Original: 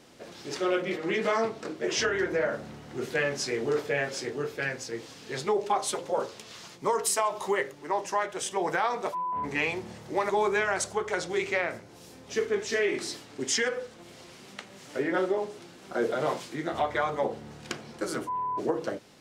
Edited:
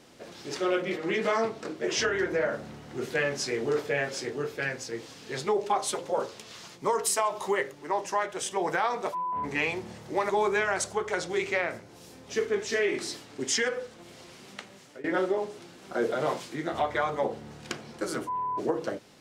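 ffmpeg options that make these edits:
ffmpeg -i in.wav -filter_complex "[0:a]asplit=2[link_01][link_02];[link_01]atrim=end=15.04,asetpts=PTS-STARTPTS,afade=type=out:start_time=14.65:duration=0.39:silence=0.0944061[link_03];[link_02]atrim=start=15.04,asetpts=PTS-STARTPTS,afade=type=in:duration=0.004:curve=hsin:silence=0.0944061[link_04];[link_03][link_04]concat=n=2:v=0:a=1" out.wav

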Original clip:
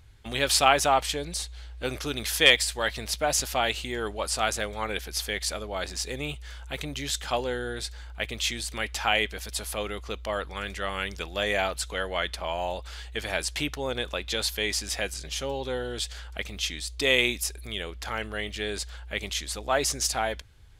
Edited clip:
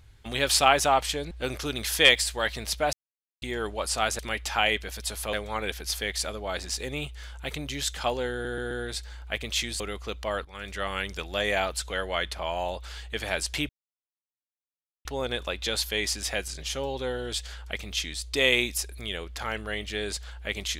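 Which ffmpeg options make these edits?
ffmpeg -i in.wav -filter_complex "[0:a]asplit=12[link_01][link_02][link_03][link_04][link_05][link_06][link_07][link_08][link_09][link_10][link_11][link_12];[link_01]atrim=end=1.312[link_13];[link_02]atrim=start=1.718:end=3.34,asetpts=PTS-STARTPTS,afade=type=out:start_time=1.618:duration=0.004:curve=hsin[link_14];[link_03]atrim=start=3.34:end=3.83,asetpts=PTS-STARTPTS,volume=0[link_15];[link_04]atrim=start=3.83:end=4.602,asetpts=PTS-STARTPTS,afade=type=in:duration=0.004:curve=hsin[link_16];[link_05]atrim=start=8.678:end=9.822[link_17];[link_06]atrim=start=4.598:end=7.722[link_18];[link_07]atrim=start=7.588:end=7.722[link_19];[link_08]atrim=start=7.588:end=7.722[link_20];[link_09]atrim=start=7.588:end=8.682[link_21];[link_10]atrim=start=9.818:end=10.47,asetpts=PTS-STARTPTS,afade=type=out:start_time=0.648:duration=0.004:curve=hsin:silence=0.188365[link_22];[link_11]atrim=start=10.47:end=13.71,asetpts=PTS-STARTPTS,afade=type=in:duration=0.34:silence=0.188365,afade=type=out:start_time=3.236:duration=0.004:curve=hsin,apad=pad_dur=1.36[link_23];[link_12]atrim=start=13.71,asetpts=PTS-STARTPTS,afade=type=in:duration=0.004:curve=hsin[link_24];[link_14][link_15][link_16]concat=n=3:v=0:a=1[link_25];[link_13][link_25]acrossfade=duration=0.004:curve1=hsin:curve2=hsin[link_26];[link_26][link_17]acrossfade=duration=0.004:curve1=hsin:curve2=hsin[link_27];[link_27][link_18]acrossfade=duration=0.004:curve1=hsin:curve2=hsin[link_28];[link_28][link_19]acrossfade=duration=0.004:curve1=hsin:curve2=hsin[link_29];[link_29][link_20]acrossfade=duration=0.004:curve1=hsin:curve2=hsin[link_30];[link_30][link_21]acrossfade=duration=0.004:curve1=hsin:curve2=hsin[link_31];[link_22][link_23][link_24]concat=n=3:v=0:a=1[link_32];[link_31][link_32]acrossfade=duration=0.004:curve1=hsin:curve2=hsin" out.wav

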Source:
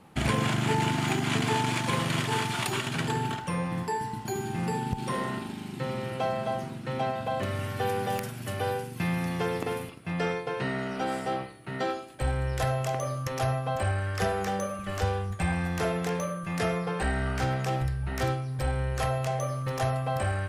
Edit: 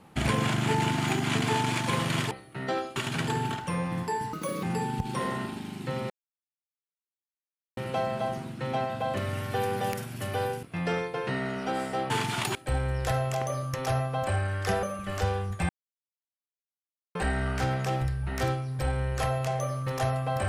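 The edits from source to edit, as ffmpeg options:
ffmpeg -i in.wav -filter_complex "[0:a]asplit=12[link_01][link_02][link_03][link_04][link_05][link_06][link_07][link_08][link_09][link_10][link_11][link_12];[link_01]atrim=end=2.312[link_13];[link_02]atrim=start=11.428:end=12.082[link_14];[link_03]atrim=start=2.758:end=4.134[link_15];[link_04]atrim=start=4.13:end=4.56,asetpts=PTS-STARTPTS,asetrate=63063,aresample=44100[link_16];[link_05]atrim=start=4.556:end=6.03,asetpts=PTS-STARTPTS,afade=type=out:start_time=1.47:duration=0.004:curve=hsin,apad=pad_dur=1.67[link_17];[link_06]atrim=start=6.03:end=8.892,asetpts=PTS-STARTPTS,afade=type=in:duration=0.004:curve=hsin[link_18];[link_07]atrim=start=9.958:end=11.432[link_19];[link_08]atrim=start=2.308:end=2.762[link_20];[link_09]atrim=start=12.078:end=14.362[link_21];[link_10]atrim=start=14.628:end=15.49,asetpts=PTS-STARTPTS,afade=type=out:start_time=0.858:duration=0.004:curve=hsin[link_22];[link_11]atrim=start=15.49:end=16.95,asetpts=PTS-STARTPTS,volume=0[link_23];[link_12]atrim=start=16.95,asetpts=PTS-STARTPTS,afade=type=in:duration=0.004:curve=hsin[link_24];[link_13][link_14]acrossfade=duration=0.004:curve1=hsin:curve2=hsin[link_25];[link_25][link_15]acrossfade=duration=0.004:curve1=hsin:curve2=hsin[link_26];[link_26][link_16]acrossfade=duration=0.004:curve1=hsin:curve2=hsin[link_27];[link_17][link_18]concat=n=2:v=0:a=1[link_28];[link_27][link_28]acrossfade=duration=0.004:curve1=hsin:curve2=hsin[link_29];[link_29][link_19]acrossfade=duration=0.004:curve1=hsin:curve2=hsin[link_30];[link_30][link_20]acrossfade=duration=0.004:curve1=hsin:curve2=hsin[link_31];[link_31][link_21]acrossfade=duration=0.004:curve1=hsin:curve2=hsin[link_32];[link_22][link_23][link_24]concat=n=3:v=0:a=1[link_33];[link_32][link_33]acrossfade=duration=0.004:curve1=hsin:curve2=hsin" out.wav

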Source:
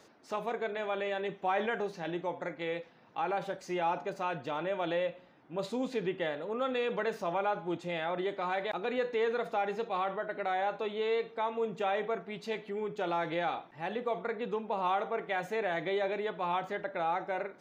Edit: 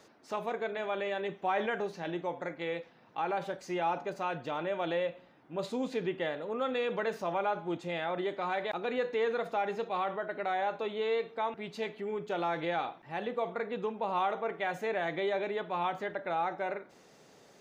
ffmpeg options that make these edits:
ffmpeg -i in.wav -filter_complex "[0:a]asplit=2[link_01][link_02];[link_01]atrim=end=11.542[link_03];[link_02]atrim=start=12.228[link_04];[link_03][link_04]acrossfade=duration=0.004:curve1=hsin:curve2=hsin" out.wav

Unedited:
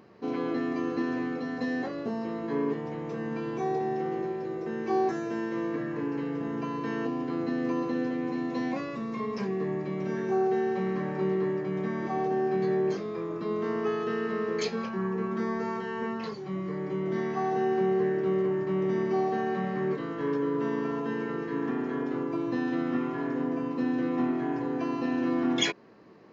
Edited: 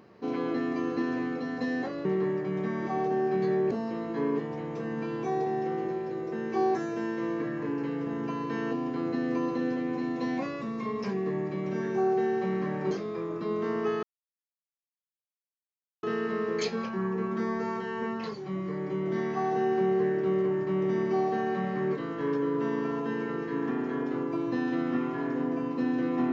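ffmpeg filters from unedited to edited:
ffmpeg -i in.wav -filter_complex "[0:a]asplit=5[link_01][link_02][link_03][link_04][link_05];[link_01]atrim=end=2.052[link_06];[link_02]atrim=start=11.248:end=12.912[link_07];[link_03]atrim=start=2.048:end=11.252[link_08];[link_04]atrim=start=12.908:end=14.03,asetpts=PTS-STARTPTS,afade=type=out:start_time=1.118:duration=0.004:curve=hsin,apad=pad_dur=2[link_09];[link_05]atrim=start=14.03,asetpts=PTS-STARTPTS,afade=type=in:duration=0.004:curve=hsin[link_10];[link_06][link_07]acrossfade=duration=0.004:curve1=hsin:curve2=hsin[link_11];[link_11][link_08]acrossfade=duration=0.004:curve1=hsin:curve2=hsin[link_12];[link_09][link_10]concat=n=2:v=0:a=1[link_13];[link_12][link_13]acrossfade=duration=0.004:curve1=hsin:curve2=hsin" out.wav

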